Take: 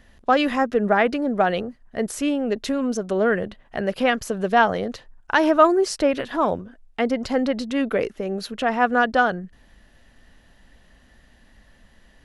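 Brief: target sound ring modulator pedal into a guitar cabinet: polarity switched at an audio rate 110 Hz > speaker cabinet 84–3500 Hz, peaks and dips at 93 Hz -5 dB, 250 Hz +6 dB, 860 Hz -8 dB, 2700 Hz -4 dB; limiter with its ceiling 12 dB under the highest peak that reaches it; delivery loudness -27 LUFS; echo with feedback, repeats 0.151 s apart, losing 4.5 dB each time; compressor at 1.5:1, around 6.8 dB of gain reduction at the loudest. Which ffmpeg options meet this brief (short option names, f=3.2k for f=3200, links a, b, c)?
-af "acompressor=threshold=-28dB:ratio=1.5,alimiter=limit=-21dB:level=0:latency=1,aecho=1:1:151|302|453|604|755|906|1057|1208|1359:0.596|0.357|0.214|0.129|0.0772|0.0463|0.0278|0.0167|0.01,aeval=exprs='val(0)*sgn(sin(2*PI*110*n/s))':c=same,highpass=84,equalizer=f=93:t=q:w=4:g=-5,equalizer=f=250:t=q:w=4:g=6,equalizer=f=860:t=q:w=4:g=-8,equalizer=f=2.7k:t=q:w=4:g=-4,lowpass=f=3.5k:w=0.5412,lowpass=f=3.5k:w=1.3066,volume=2.5dB"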